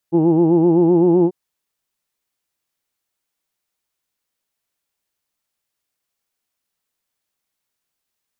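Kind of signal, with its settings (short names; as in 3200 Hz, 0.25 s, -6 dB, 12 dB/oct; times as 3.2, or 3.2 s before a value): formant vowel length 1.19 s, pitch 162 Hz, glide +1.5 st, vibrato 7.8 Hz, F1 350 Hz, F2 850 Hz, F3 2800 Hz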